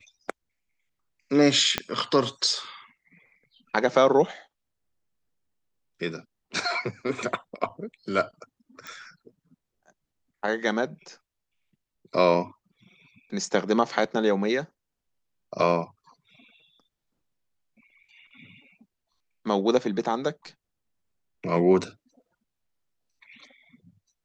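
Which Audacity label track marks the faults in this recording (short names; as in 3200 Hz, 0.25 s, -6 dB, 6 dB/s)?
1.780000	1.780000	pop -8 dBFS
8.870000	8.870000	pop -24 dBFS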